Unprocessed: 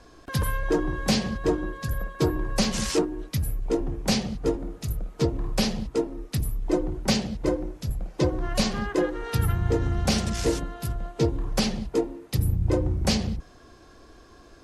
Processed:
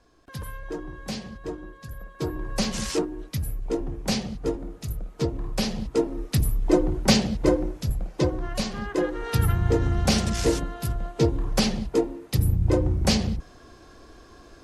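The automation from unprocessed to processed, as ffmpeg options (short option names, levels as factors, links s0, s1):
-af "volume=3.76,afade=t=in:st=2:d=0.61:silence=0.398107,afade=t=in:st=5.67:d=0.53:silence=0.473151,afade=t=out:st=7.62:d=1.05:silence=0.334965,afade=t=in:st=8.67:d=0.65:silence=0.446684"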